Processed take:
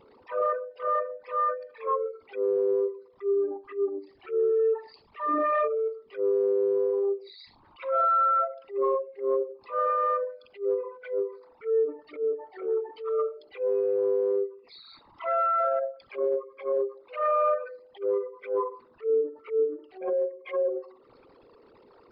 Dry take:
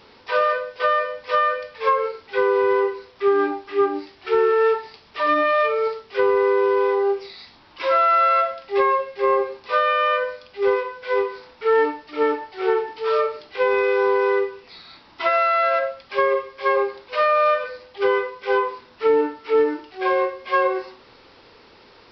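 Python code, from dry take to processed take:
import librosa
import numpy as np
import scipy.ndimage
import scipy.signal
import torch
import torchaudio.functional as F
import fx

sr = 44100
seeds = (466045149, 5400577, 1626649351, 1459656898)

y = fx.envelope_sharpen(x, sr, power=3.0)
y = fx.transient(y, sr, attack_db=-8, sustain_db=-3)
y = F.gain(torch.from_numpy(y), -5.5).numpy()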